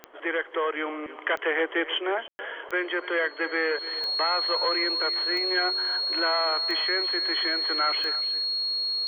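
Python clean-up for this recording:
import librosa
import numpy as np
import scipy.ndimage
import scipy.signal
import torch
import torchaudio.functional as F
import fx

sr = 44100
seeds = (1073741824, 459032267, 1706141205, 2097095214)

y = fx.fix_declick_ar(x, sr, threshold=10.0)
y = fx.notch(y, sr, hz=4300.0, q=30.0)
y = fx.fix_ambience(y, sr, seeds[0], print_start_s=0.0, print_end_s=0.5, start_s=2.28, end_s=2.39)
y = fx.fix_echo_inverse(y, sr, delay_ms=290, level_db=-15.5)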